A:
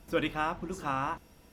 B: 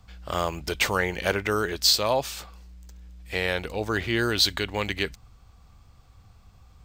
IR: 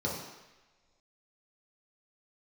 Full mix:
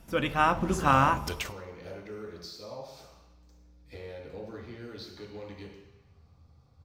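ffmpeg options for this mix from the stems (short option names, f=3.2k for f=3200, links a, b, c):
-filter_complex "[0:a]dynaudnorm=f=250:g=3:m=8.5dB,volume=1dB,asplit=3[a][b][c];[b]volume=-20.5dB[d];[1:a]asoftclip=type=tanh:threshold=-12.5dB,acompressor=threshold=-34dB:ratio=6,adelay=600,volume=2.5dB,asplit=2[e][f];[f]volume=-18dB[g];[c]apad=whole_len=328500[h];[e][h]sidechaingate=range=-33dB:threshold=-48dB:ratio=16:detection=peak[i];[2:a]atrim=start_sample=2205[j];[d][g]amix=inputs=2:normalize=0[k];[k][j]afir=irnorm=-1:irlink=0[l];[a][i][l]amix=inputs=3:normalize=0"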